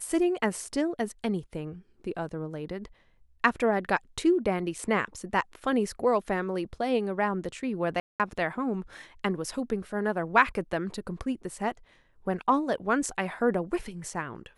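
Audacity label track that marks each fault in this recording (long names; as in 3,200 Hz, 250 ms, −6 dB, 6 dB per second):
8.000000	8.200000	drop-out 197 ms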